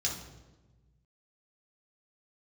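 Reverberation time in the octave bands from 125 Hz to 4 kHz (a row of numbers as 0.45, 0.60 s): 2.0, 1.6, 1.3, 1.0, 0.90, 0.80 s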